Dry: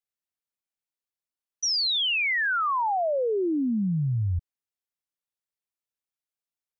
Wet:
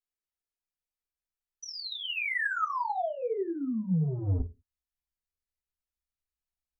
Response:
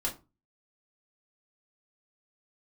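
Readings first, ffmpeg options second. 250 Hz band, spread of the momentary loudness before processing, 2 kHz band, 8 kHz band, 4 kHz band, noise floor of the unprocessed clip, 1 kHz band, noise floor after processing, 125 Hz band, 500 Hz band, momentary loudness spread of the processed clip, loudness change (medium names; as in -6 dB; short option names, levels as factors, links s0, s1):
-5.0 dB, 6 LU, -6.0 dB, no reading, -12.0 dB, under -85 dBFS, -5.5 dB, under -85 dBFS, -3.0 dB, -6.5 dB, 9 LU, -6.5 dB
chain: -filter_complex "[0:a]aeval=exprs='0.0794*(cos(1*acos(clip(val(0)/0.0794,-1,1)))-cos(1*PI/2))+0.00126*(cos(5*acos(clip(val(0)/0.0794,-1,1)))-cos(5*PI/2))':c=same,asubboost=boost=8:cutoff=120,acrossover=split=2800[s0][s1];[s1]acompressor=threshold=0.0141:ratio=4:attack=1:release=60[s2];[s0][s2]amix=inputs=2:normalize=0,acrossover=split=170|1000[s3][s4][s5];[s3]asoftclip=type=tanh:threshold=0.075[s6];[s6][s4][s5]amix=inputs=3:normalize=0[s7];[1:a]atrim=start_sample=2205,afade=t=out:st=0.37:d=0.01,atrim=end_sample=16758,asetrate=61740,aresample=44100[s8];[s7][s8]afir=irnorm=-1:irlink=0,volume=0.447"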